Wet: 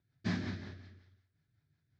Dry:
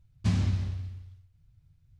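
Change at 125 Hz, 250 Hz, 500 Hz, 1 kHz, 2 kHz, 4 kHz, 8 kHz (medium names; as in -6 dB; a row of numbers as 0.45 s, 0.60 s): -14.0 dB, -4.0 dB, 0.0 dB, -3.0 dB, +2.0 dB, -4.0 dB, no reading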